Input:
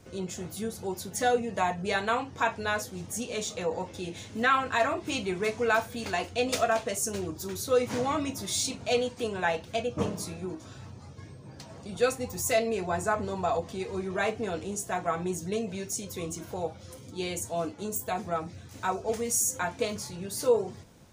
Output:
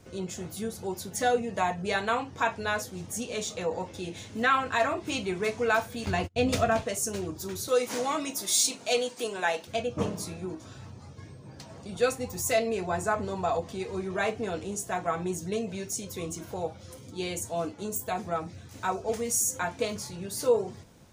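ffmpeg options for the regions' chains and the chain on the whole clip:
ffmpeg -i in.wav -filter_complex "[0:a]asettb=1/sr,asplit=3[link_01][link_02][link_03];[link_01]atrim=end=6.064[link_04];[link_02]atrim=start=6.06:end=6.83,asetpts=PTS-STARTPTS,afade=type=in:duration=0.004:curve=qsin,afade=type=out:start_time=0.766:duration=0.004:curve=qsin,agate=range=-35dB:threshold=-40dB:ratio=16:release=100:detection=peak,bass=frequency=250:gain=13,treble=frequency=4000:gain=-3[link_05];[link_03]atrim=start=6.826[link_06];[link_04][link_05]acrossfade=duration=0.004:curve1=hsin:curve2=qsin[link_07];[link_07][link_06]acrossfade=duration=0.004:curve1=qsin:curve2=hsin,asettb=1/sr,asplit=3[link_08][link_09][link_10];[link_08]atrim=end=7.684[link_11];[link_09]atrim=start=7.68:end=9.67,asetpts=PTS-STARTPTS,afade=type=in:duration=0.004:curve=qsin,afade=type=out:start_time=1.986:duration=0.004:curve=qsin,highpass=270,aemphasis=mode=production:type=cd[link_12];[link_10]atrim=start=9.666[link_13];[link_11][link_12]acrossfade=duration=0.004:curve1=hsin:curve2=qsin[link_14];[link_14][link_13]acrossfade=duration=0.004:curve1=qsin:curve2=hsin" out.wav

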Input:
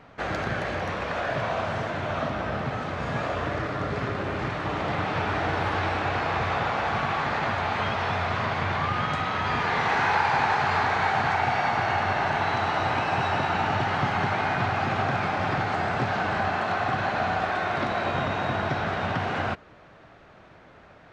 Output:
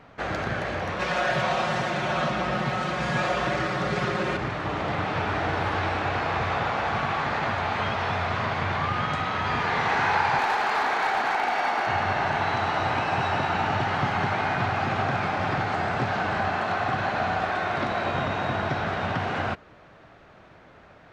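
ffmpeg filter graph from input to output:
ffmpeg -i in.wav -filter_complex "[0:a]asettb=1/sr,asplit=3[link_01][link_02][link_03];[link_01]atrim=end=0.994[link_04];[link_02]atrim=start=0.99:end=4.37,asetpts=PTS-STARTPTS,afade=type=in:duration=0.004:curve=qsin,afade=type=out:start_time=3.376:duration=0.004:curve=qsin,highshelf=frequency=2900:gain=7.5,aecho=1:1:5.5:0.9,atrim=end_sample=149058[link_05];[link_03]atrim=start=4.366[link_06];[link_04][link_05]acrossfade=duration=0.004:curve1=hsin:curve2=qsin[link_07];[link_07][link_06]acrossfade=duration=0.004:curve1=qsin:curve2=hsin,asettb=1/sr,asplit=3[link_08][link_09][link_10];[link_08]atrim=end=10.394[link_11];[link_09]atrim=start=10.39:end=11.87,asetpts=PTS-STARTPTS,afade=type=in:duration=0.004:curve=qsin,afade=type=out:start_time=1.476:duration=0.004:curve=qsin,highpass=frequency=250:width=0.5412,highpass=frequency=250:width=1.3066,volume=18.5dB,asoftclip=hard,volume=-18.5dB[link_12];[link_10]atrim=start=11.866[link_13];[link_11][link_12]acrossfade=duration=0.004:curve1=hsin:curve2=qsin[link_14];[link_14][link_13]acrossfade=duration=0.004:curve1=qsin:curve2=hsin" out.wav

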